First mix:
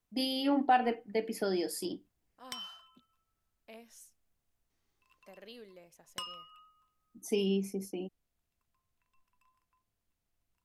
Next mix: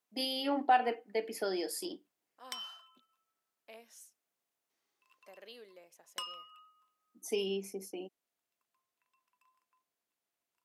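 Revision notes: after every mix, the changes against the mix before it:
master: add high-pass 370 Hz 12 dB/octave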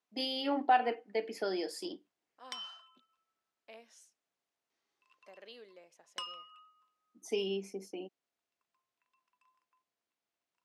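master: add low-pass 6.4 kHz 12 dB/octave

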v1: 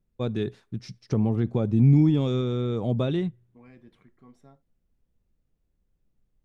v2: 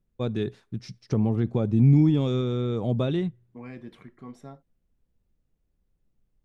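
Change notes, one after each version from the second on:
second voice +10.5 dB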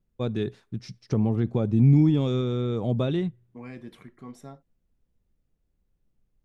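second voice: add treble shelf 7.4 kHz +12 dB

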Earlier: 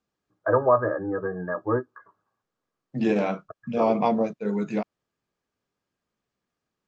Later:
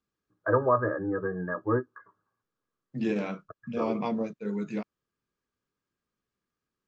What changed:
second voice -4.5 dB; master: add peaking EQ 720 Hz -8.5 dB 0.82 oct

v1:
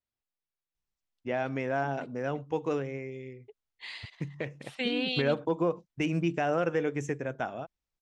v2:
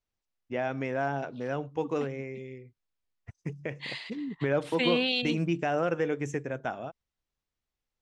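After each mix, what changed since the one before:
first voice: entry -0.75 s; second voice +4.0 dB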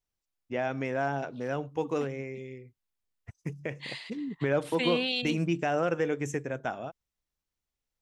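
second voice -3.0 dB; master: remove distance through air 54 m

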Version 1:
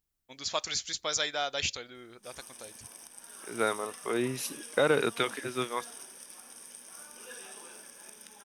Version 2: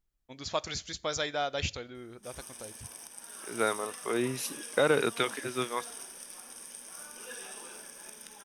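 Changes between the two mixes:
first voice: add tilt EQ -2.5 dB/octave; reverb: on, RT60 0.50 s

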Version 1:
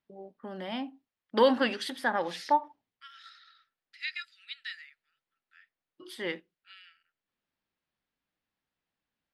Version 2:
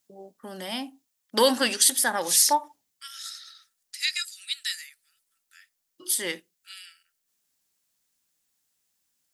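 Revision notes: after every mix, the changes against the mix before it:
second voice: add treble shelf 7.5 kHz +11.5 dB; master: remove distance through air 380 m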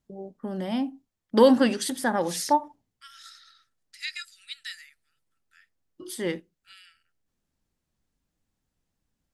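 master: add tilt EQ -4.5 dB/octave

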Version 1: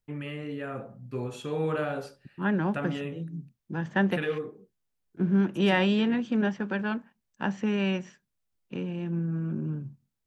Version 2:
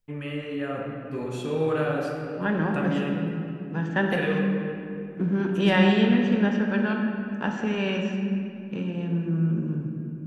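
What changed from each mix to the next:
reverb: on, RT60 2.7 s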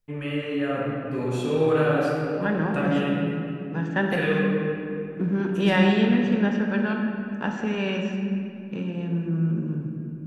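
first voice: send +6.0 dB; second voice: add band-stop 3.1 kHz, Q 26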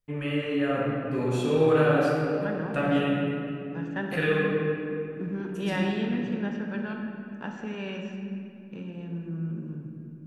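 second voice -8.5 dB

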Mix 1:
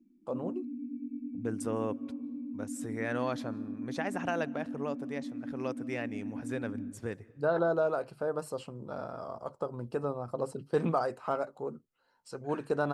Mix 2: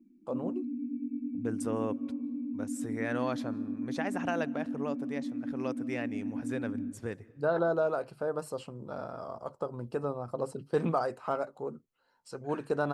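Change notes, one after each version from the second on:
background +3.5 dB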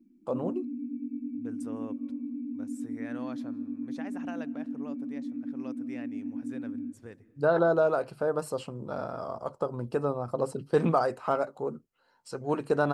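first voice +4.5 dB; second voice -9.0 dB

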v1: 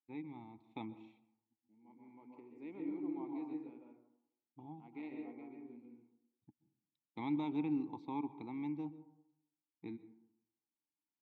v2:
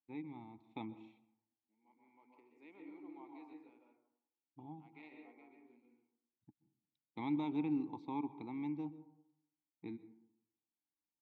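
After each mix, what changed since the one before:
second voice: add high-pass 1.2 kHz 6 dB/octave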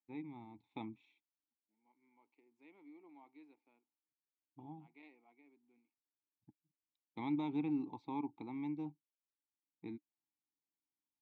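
reverb: off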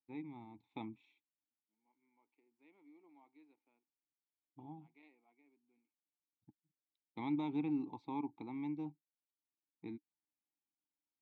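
second voice -5.0 dB

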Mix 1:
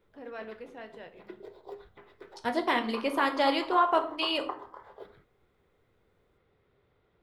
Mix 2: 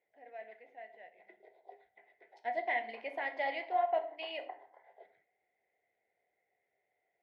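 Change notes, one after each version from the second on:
master: add two resonant band-passes 1.2 kHz, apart 1.5 oct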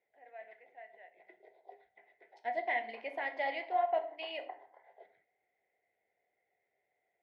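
first voice: add band-pass filter 1.3 kHz, Q 0.65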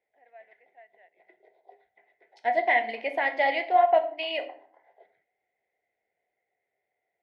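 first voice: send -11.5 dB; second voice +11.0 dB

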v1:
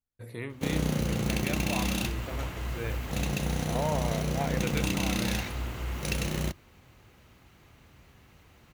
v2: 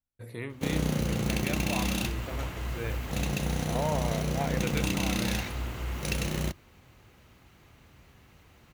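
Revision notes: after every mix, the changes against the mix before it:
no change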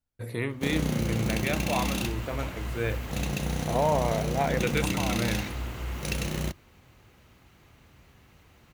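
first voice +7.0 dB; second voice +6.5 dB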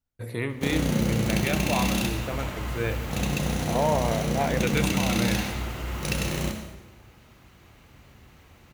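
reverb: on, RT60 1.1 s

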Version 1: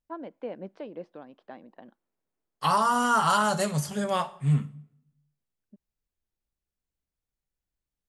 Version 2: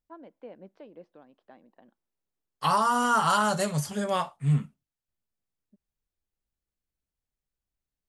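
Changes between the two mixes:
first voice -8.5 dB; reverb: off

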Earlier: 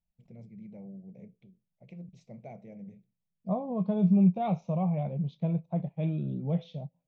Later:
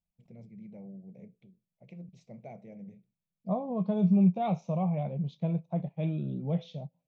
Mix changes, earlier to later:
second voice: remove distance through air 91 m; master: add bass shelf 63 Hz -8.5 dB

